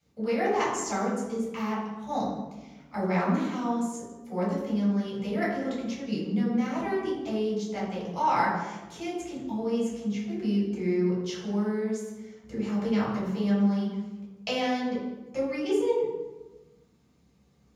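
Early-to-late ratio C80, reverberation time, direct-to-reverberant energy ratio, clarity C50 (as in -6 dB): 4.5 dB, 1.2 s, -7.0 dB, 1.5 dB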